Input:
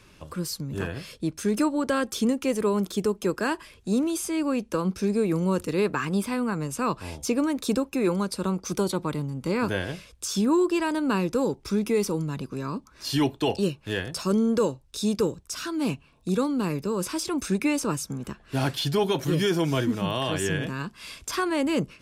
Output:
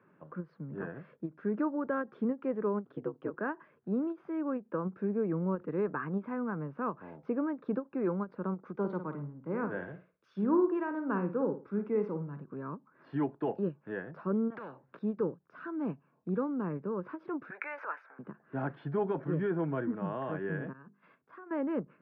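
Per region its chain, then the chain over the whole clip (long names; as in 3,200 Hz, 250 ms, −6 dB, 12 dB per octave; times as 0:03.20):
0:02.84–0:03.31: parametric band 3,000 Hz +8.5 dB 0.32 octaves + ring modulation 65 Hz
0:08.75–0:12.45: high-shelf EQ 5,700 Hz +4.5 dB + flutter between parallel walls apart 9.4 metres, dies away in 0.37 s + multiband upward and downward expander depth 70%
0:14.50–0:14.99: high-pass filter 96 Hz 24 dB per octave + every bin compressed towards the loudest bin 4 to 1
0:17.50–0:18.19: transient designer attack +3 dB, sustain +10 dB + high-pass filter 660 Hz 24 dB per octave + flat-topped bell 1,900 Hz +9 dB 1 octave
0:20.73–0:21.51: downward compressor 8 to 1, threshold −37 dBFS + noise gate −43 dBFS, range −14 dB + mains-hum notches 50/100/150/200/250/300/350/400/450 Hz
whole clip: elliptic band-pass filter 150–1,600 Hz, stop band 60 dB; every ending faded ahead of time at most 360 dB per second; level −7 dB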